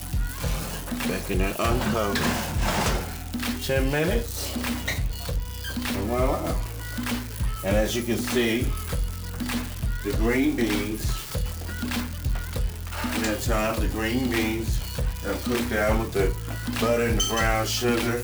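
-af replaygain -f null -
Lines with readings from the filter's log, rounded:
track_gain = +7.5 dB
track_peak = 0.187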